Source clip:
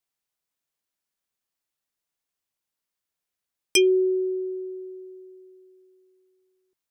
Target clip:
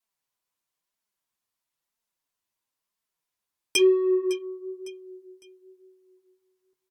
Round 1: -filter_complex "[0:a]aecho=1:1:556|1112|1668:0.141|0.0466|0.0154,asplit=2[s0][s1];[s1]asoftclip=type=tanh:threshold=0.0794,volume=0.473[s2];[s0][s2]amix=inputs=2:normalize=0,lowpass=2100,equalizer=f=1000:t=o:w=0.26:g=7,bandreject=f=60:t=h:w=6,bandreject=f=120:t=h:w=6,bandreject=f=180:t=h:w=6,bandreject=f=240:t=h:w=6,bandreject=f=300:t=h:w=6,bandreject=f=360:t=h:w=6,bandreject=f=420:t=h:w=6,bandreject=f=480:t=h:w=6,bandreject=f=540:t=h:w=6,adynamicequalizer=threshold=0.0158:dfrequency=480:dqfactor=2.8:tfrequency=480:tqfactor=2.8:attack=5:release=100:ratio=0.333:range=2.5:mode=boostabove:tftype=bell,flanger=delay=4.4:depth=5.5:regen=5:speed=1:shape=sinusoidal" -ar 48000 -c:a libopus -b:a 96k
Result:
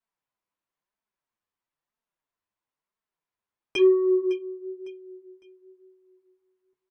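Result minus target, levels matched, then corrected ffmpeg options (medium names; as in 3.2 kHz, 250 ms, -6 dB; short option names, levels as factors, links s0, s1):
2 kHz band -4.5 dB; saturation: distortion -6 dB
-filter_complex "[0:a]aecho=1:1:556|1112|1668:0.141|0.0466|0.0154,asplit=2[s0][s1];[s1]asoftclip=type=tanh:threshold=0.0335,volume=0.473[s2];[s0][s2]amix=inputs=2:normalize=0,equalizer=f=1000:t=o:w=0.26:g=7,bandreject=f=60:t=h:w=6,bandreject=f=120:t=h:w=6,bandreject=f=180:t=h:w=6,bandreject=f=240:t=h:w=6,bandreject=f=300:t=h:w=6,bandreject=f=360:t=h:w=6,bandreject=f=420:t=h:w=6,bandreject=f=480:t=h:w=6,bandreject=f=540:t=h:w=6,adynamicequalizer=threshold=0.0158:dfrequency=480:dqfactor=2.8:tfrequency=480:tqfactor=2.8:attack=5:release=100:ratio=0.333:range=2.5:mode=boostabove:tftype=bell,flanger=delay=4.4:depth=5.5:regen=5:speed=1:shape=sinusoidal" -ar 48000 -c:a libopus -b:a 96k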